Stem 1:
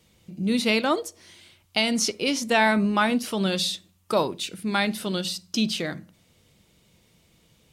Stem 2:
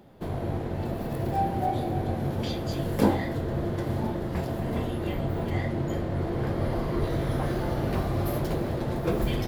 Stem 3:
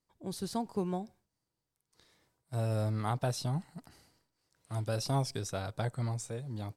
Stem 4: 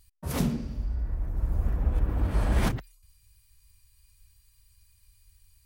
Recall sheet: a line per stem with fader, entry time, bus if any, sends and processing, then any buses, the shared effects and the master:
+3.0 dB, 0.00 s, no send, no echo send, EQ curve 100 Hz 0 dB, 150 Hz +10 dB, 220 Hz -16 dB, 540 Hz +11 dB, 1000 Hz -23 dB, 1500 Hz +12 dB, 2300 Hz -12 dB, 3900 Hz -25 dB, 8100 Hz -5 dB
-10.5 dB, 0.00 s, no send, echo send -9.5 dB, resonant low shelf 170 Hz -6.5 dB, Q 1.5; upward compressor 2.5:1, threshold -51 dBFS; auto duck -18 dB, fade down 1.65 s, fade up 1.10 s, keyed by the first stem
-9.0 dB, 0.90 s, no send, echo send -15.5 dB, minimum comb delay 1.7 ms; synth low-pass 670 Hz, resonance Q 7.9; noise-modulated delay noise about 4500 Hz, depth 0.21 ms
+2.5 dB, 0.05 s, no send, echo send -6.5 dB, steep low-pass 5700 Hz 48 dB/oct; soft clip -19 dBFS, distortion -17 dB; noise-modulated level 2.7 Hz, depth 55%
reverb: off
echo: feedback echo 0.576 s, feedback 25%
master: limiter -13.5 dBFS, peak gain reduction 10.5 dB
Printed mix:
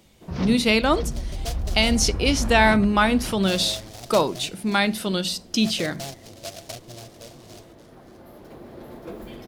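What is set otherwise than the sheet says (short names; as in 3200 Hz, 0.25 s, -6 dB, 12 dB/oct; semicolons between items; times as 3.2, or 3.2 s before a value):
stem 1: missing EQ curve 100 Hz 0 dB, 150 Hz +10 dB, 220 Hz -16 dB, 540 Hz +11 dB, 1000 Hz -23 dB, 1500 Hz +12 dB, 2300 Hz -12 dB, 3900 Hz -25 dB, 8100 Hz -5 dB; master: missing limiter -13.5 dBFS, peak gain reduction 10.5 dB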